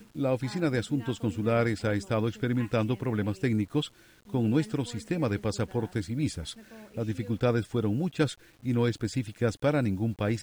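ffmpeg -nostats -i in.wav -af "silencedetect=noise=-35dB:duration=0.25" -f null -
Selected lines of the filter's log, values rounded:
silence_start: 3.87
silence_end: 4.34 | silence_duration: 0.47
silence_start: 6.52
silence_end: 6.97 | silence_duration: 0.45
silence_start: 8.33
silence_end: 8.65 | silence_duration: 0.32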